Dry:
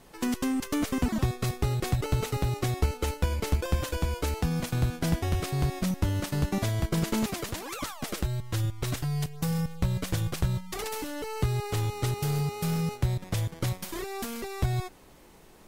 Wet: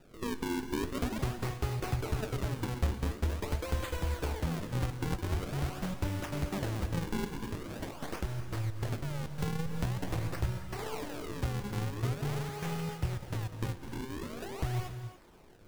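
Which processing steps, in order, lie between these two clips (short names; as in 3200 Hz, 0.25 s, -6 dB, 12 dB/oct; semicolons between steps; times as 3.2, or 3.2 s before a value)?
dynamic EQ 170 Hz, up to -4 dB, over -39 dBFS, Q 0.93; decimation with a swept rate 40×, swing 160% 0.45 Hz; flange 0.82 Hz, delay 6.2 ms, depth 9.5 ms, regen +71%; non-linear reverb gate 0.31 s rising, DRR 9.5 dB; 9.38–10.32 three-band squash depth 100%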